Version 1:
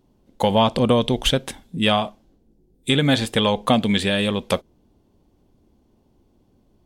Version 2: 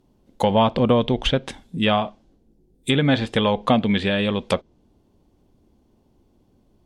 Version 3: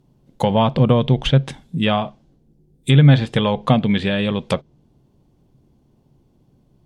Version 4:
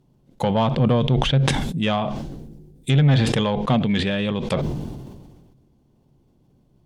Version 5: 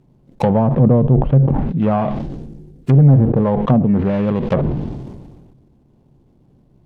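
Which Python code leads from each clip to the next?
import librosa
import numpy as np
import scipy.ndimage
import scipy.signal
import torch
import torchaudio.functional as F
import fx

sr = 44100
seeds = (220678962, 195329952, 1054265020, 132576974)

y1 = fx.env_lowpass_down(x, sr, base_hz=2900.0, full_db=-16.0)
y2 = fx.peak_eq(y1, sr, hz=140.0, db=14.5, octaves=0.43)
y3 = 10.0 ** (-7.0 / 20.0) * np.tanh(y2 / 10.0 ** (-7.0 / 20.0))
y3 = fx.sustainer(y3, sr, db_per_s=35.0)
y3 = y3 * librosa.db_to_amplitude(-3.0)
y4 = scipy.signal.medfilt(y3, 25)
y4 = fx.env_lowpass_down(y4, sr, base_hz=690.0, full_db=-16.0)
y4 = y4 * librosa.db_to_amplitude(6.5)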